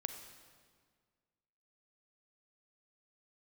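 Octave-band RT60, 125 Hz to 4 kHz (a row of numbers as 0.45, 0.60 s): 2.0, 2.0, 1.8, 1.7, 1.6, 1.4 s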